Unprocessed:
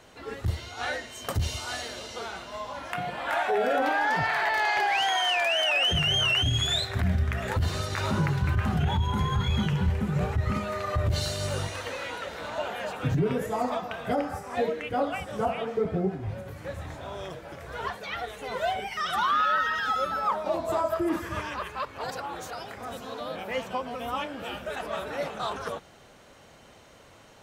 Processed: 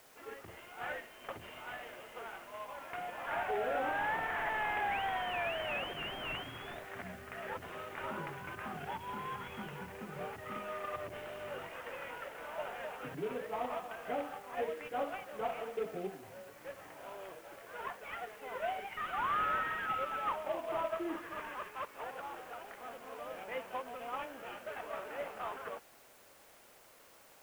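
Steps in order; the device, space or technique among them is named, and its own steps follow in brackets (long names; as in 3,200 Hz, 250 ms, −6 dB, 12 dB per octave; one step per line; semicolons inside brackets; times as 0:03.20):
army field radio (band-pass filter 350–2,800 Hz; variable-slope delta modulation 16 kbit/s; white noise bed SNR 23 dB)
level −8 dB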